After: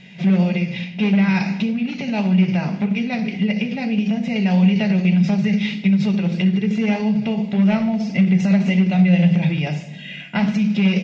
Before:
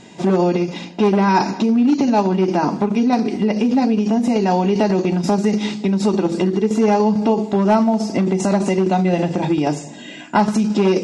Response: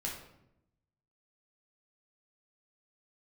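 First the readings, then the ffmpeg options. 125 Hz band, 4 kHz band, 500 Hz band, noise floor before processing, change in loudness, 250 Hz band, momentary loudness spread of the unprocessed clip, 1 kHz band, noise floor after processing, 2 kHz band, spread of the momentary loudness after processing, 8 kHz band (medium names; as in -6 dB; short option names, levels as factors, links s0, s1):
+4.5 dB, +0.5 dB, -10.5 dB, -35 dBFS, -1.0 dB, 0.0 dB, 4 LU, -12.0 dB, -34 dBFS, +3.0 dB, 7 LU, under -10 dB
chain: -filter_complex "[0:a]firequalizer=gain_entry='entry(120,0);entry(170,12);entry(290,-14);entry(520,-2);entry(980,-11);entry(2200,12);entry(4200,0);entry(6200,-6);entry(9000,-25)':delay=0.05:min_phase=1,flanger=delay=6.1:depth=8.5:regen=-73:speed=1.7:shape=sinusoidal,asplit=2[s0][s1];[1:a]atrim=start_sample=2205,adelay=60[s2];[s1][s2]afir=irnorm=-1:irlink=0,volume=0.2[s3];[s0][s3]amix=inputs=2:normalize=0"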